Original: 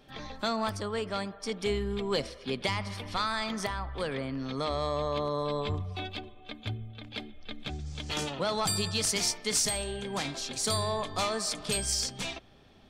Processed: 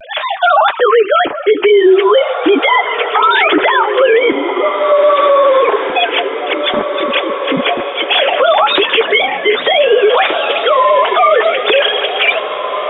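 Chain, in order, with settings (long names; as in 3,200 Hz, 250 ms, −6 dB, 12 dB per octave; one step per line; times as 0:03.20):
three sine waves on the formant tracks
in parallel at 0 dB: compressor whose output falls as the input rises −34 dBFS
on the sum: flanger 0.16 Hz, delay 3.2 ms, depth 8.7 ms, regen −31%
pitch vibrato 0.61 Hz 39 cents
flanger 1.1 Hz, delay 1.1 ms, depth 8.7 ms, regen −37%
0:04.32–0:04.92: transistor ladder low-pass 1,000 Hz, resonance 70%
on a send: feedback delay with all-pass diffusion 1,939 ms, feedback 50%, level −12 dB
on the sum: boost into a limiter +29 dB
level −1 dB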